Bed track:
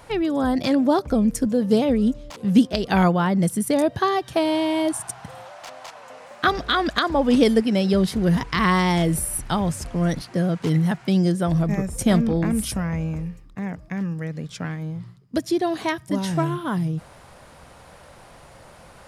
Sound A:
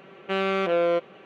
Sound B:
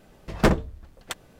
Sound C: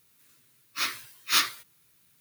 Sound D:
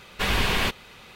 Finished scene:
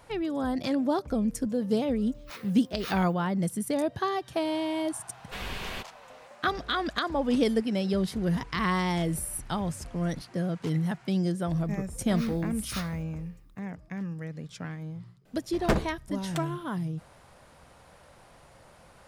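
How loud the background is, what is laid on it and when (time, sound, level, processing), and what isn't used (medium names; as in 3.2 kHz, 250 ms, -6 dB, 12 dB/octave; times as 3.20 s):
bed track -8 dB
1.51 s: add C -12.5 dB + peaking EQ 7.5 kHz -9.5 dB 2.4 oct
5.12 s: add D -13 dB
11.40 s: add C -17 dB + resonant high-pass 1.1 kHz, resonance Q 1.8
15.25 s: add B -6 dB
not used: A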